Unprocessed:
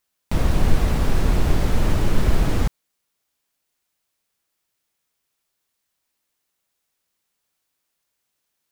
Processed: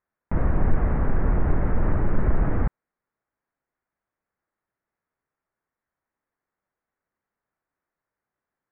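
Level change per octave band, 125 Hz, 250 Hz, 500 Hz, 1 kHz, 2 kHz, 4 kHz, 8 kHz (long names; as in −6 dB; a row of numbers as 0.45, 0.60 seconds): −2.5 dB, −2.5 dB, −2.5 dB, −2.5 dB, −5.0 dB, below −30 dB, below −40 dB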